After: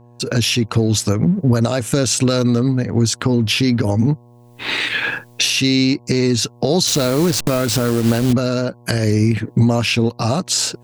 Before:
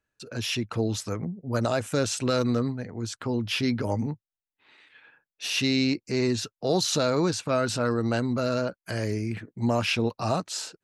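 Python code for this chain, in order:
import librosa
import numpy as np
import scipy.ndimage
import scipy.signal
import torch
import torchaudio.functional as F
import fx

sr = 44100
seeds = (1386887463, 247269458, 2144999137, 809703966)

p1 = fx.delta_hold(x, sr, step_db=-30.5, at=(6.87, 8.33))
p2 = fx.recorder_agc(p1, sr, target_db=-16.5, rise_db_per_s=50.0, max_gain_db=30)
p3 = fx.peak_eq(p2, sr, hz=1100.0, db=-6.5, octaves=2.6)
p4 = np.sign(p3) * np.maximum(np.abs(p3) - 10.0 ** (-41.5 / 20.0), 0.0)
p5 = p3 + F.gain(torch.from_numpy(p4), -9.0).numpy()
p6 = fx.dmg_buzz(p5, sr, base_hz=120.0, harmonics=9, level_db=-54.0, tilt_db=-6, odd_only=False)
y = F.gain(torch.from_numpy(p6), 8.0).numpy()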